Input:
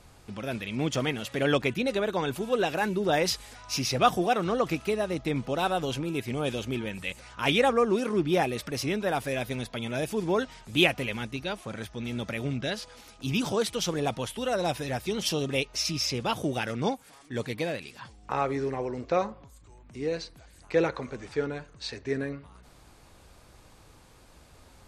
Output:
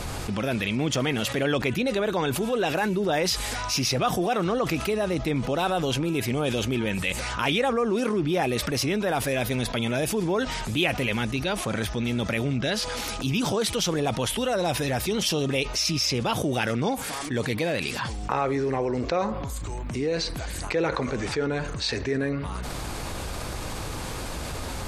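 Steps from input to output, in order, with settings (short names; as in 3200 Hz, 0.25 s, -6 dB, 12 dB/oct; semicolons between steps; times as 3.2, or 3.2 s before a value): fast leveller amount 70%; gain -4.5 dB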